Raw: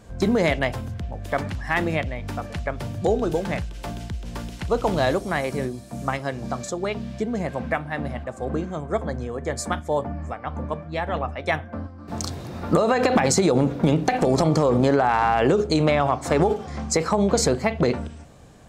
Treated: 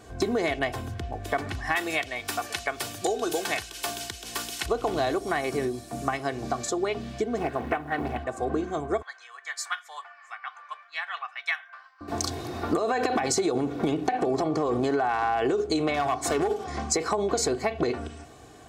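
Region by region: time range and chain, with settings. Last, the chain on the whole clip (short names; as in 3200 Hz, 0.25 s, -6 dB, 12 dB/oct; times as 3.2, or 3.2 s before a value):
1.75–4.66 tilt +3.5 dB/oct + notch 2000 Hz, Q 30
7.37–8.18 high shelf 3700 Hz -7 dB + companded quantiser 8-bit + Doppler distortion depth 0.59 ms
9.02–12.01 HPF 1300 Hz 24 dB/oct + bell 9400 Hz -8.5 dB 1.3 oct
14.07–14.66 HPF 76 Hz + high shelf 3800 Hz -10.5 dB
15.94–16.64 high shelf 4700 Hz +6.5 dB + overloaded stage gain 15.5 dB
whole clip: HPF 170 Hz 6 dB/oct; comb 2.7 ms, depth 64%; compressor 4:1, threshold -25 dBFS; gain +1.5 dB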